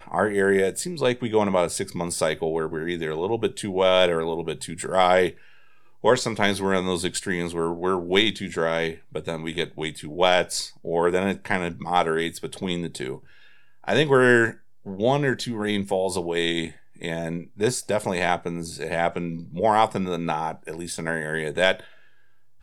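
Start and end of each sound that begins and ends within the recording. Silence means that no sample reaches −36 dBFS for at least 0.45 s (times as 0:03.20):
0:06.04–0:13.17
0:13.84–0:21.84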